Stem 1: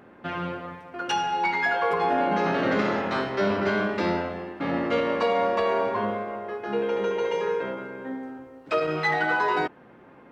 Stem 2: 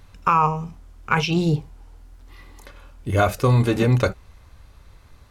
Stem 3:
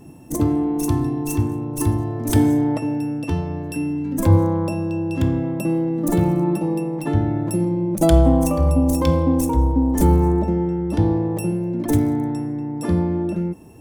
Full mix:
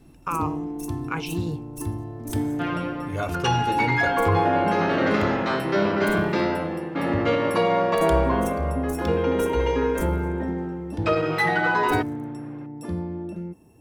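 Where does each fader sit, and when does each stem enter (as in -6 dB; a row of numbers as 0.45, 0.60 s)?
+2.0, -10.0, -10.0 dB; 2.35, 0.00, 0.00 s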